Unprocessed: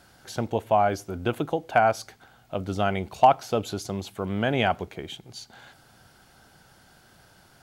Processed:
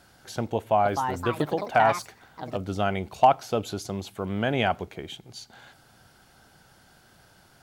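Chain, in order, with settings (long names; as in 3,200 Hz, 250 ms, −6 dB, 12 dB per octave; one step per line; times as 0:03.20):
0:00.56–0:02.73: delay with pitch and tempo change per echo 288 ms, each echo +4 semitones, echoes 2, each echo −6 dB
level −1 dB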